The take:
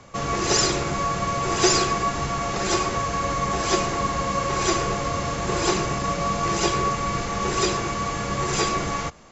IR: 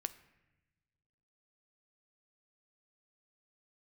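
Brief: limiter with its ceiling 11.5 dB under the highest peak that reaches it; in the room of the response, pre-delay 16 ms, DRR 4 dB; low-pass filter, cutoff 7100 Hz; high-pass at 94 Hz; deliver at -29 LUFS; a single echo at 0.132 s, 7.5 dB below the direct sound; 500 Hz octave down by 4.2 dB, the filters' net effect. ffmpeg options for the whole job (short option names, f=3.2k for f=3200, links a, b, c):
-filter_complex "[0:a]highpass=94,lowpass=7.1k,equalizer=f=500:t=o:g=-6,alimiter=limit=-18.5dB:level=0:latency=1,aecho=1:1:132:0.422,asplit=2[a][b];[1:a]atrim=start_sample=2205,adelay=16[c];[b][c]afir=irnorm=-1:irlink=0,volume=-2.5dB[d];[a][d]amix=inputs=2:normalize=0,volume=-5dB"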